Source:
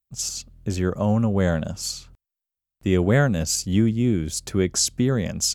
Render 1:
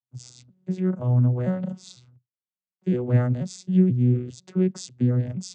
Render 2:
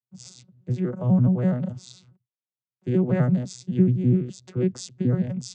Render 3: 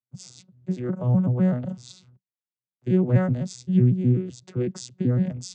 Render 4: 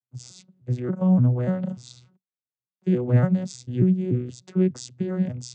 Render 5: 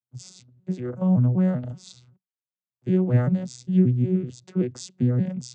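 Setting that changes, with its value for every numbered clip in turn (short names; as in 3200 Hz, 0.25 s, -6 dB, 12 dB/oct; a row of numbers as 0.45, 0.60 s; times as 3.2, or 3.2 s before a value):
arpeggiated vocoder, a note every: 486, 84, 126, 293, 192 ms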